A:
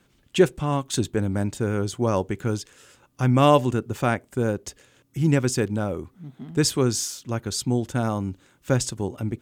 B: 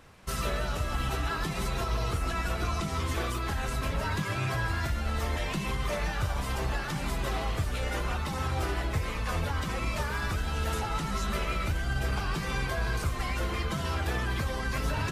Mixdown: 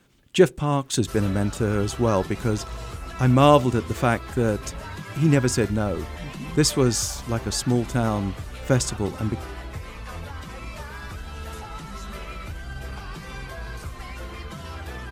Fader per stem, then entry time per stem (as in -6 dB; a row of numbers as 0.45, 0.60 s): +1.5, -5.0 dB; 0.00, 0.80 s